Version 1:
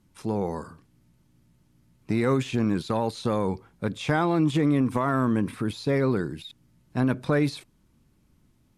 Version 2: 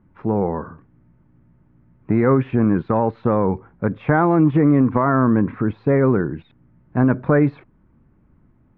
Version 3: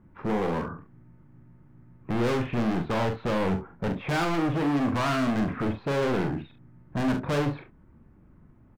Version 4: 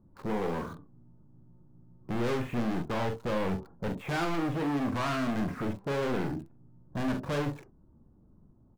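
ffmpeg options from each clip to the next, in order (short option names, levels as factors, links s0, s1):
-af "lowpass=f=1800:w=0.5412,lowpass=f=1800:w=1.3066,volume=2.37"
-filter_complex "[0:a]volume=17.8,asoftclip=hard,volume=0.0562,asplit=2[s0][s1];[s1]aecho=0:1:42|69:0.473|0.2[s2];[s0][s2]amix=inputs=2:normalize=0"
-filter_complex "[0:a]acrossover=split=1100[s0][s1];[s1]aeval=exprs='val(0)*gte(abs(val(0)),0.00447)':c=same[s2];[s0][s2]amix=inputs=2:normalize=0,flanger=delay=1.7:depth=4:regen=85:speed=0.28:shape=sinusoidal"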